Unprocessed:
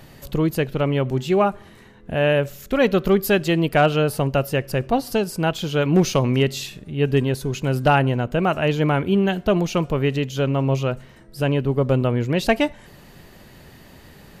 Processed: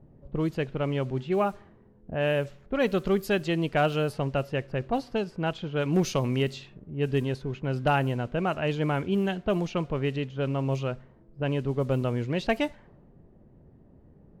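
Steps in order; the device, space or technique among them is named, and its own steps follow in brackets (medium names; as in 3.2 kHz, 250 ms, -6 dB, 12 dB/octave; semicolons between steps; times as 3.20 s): cassette deck with a dynamic noise filter (white noise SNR 31 dB; level-controlled noise filter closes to 410 Hz, open at -13.5 dBFS); trim -7.5 dB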